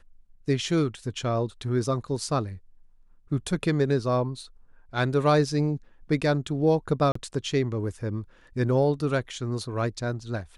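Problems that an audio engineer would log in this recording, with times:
7.12–7.15 s: dropout 34 ms

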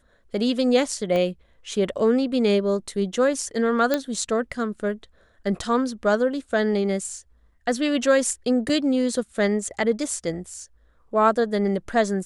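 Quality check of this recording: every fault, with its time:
1.16 s: pop -15 dBFS
3.94 s: pop -8 dBFS
8.69 s: dropout 3.4 ms

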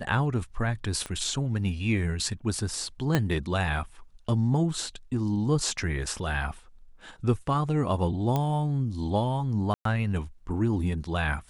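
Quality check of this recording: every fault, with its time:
1.06 s: pop -20 dBFS
3.15 s: pop -9 dBFS
8.36 s: pop -14 dBFS
9.74–9.85 s: dropout 113 ms

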